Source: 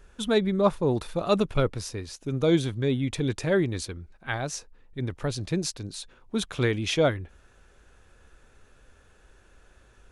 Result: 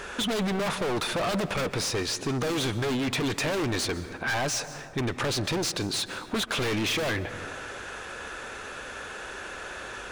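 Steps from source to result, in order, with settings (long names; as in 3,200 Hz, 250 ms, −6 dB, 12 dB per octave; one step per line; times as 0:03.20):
mid-hump overdrive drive 35 dB, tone 4,200 Hz, clips at −9 dBFS
wave folding −15.5 dBFS
on a send at −14.5 dB: convolution reverb RT60 1.6 s, pre-delay 118 ms
on the sum: downward compressor 2 to 1, threshold −28 dBFS, peak gain reduction 7 dB
level −3 dB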